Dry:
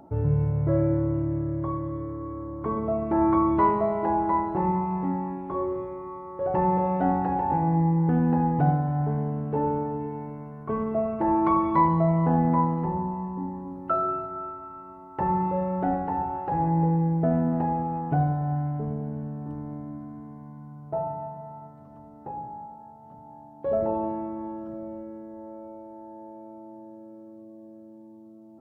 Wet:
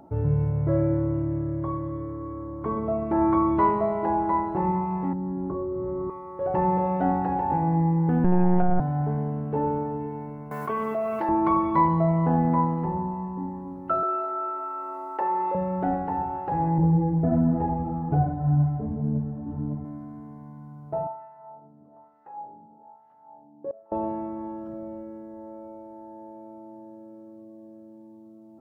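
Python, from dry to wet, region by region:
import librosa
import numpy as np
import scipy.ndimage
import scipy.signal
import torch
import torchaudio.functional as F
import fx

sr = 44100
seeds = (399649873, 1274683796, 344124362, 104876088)

y = fx.chain(x, sr, fx.lowpass(hz=1300.0, slope=24),
    fx.peak_eq(hz=880.0, db=-13.0, octaves=1.6),
    fx.env_flatten(amount_pct=100), at=(5.13, 6.1))
y = fx.chain(y, sr, fx.lpc_monotone(seeds[0], pitch_hz=180.0, order=10),
    fx.env_flatten(amount_pct=100), at=(8.24, 8.8))
y = fx.chain(y, sr, fx.tilt_eq(slope=4.5),
    fx.env_flatten(amount_pct=70), at=(10.51, 11.29))
y = fx.chain(y, sr, fx.highpass(hz=360.0, slope=24),
    fx.env_flatten(amount_pct=50), at=(14.03, 15.55))
y = fx.chain(y, sr, fx.tilt_eq(slope=-3.0),
    fx.ensemble(), at=(16.78, 19.85))
y = fx.chain(y, sr, fx.hum_notches(base_hz=60, count=3),
    fx.filter_lfo_bandpass(shape='sine', hz=1.1, low_hz=270.0, high_hz=1900.0, q=1.5),
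    fx.gate_flip(shuts_db=-24.0, range_db=-24), at=(21.07, 23.92))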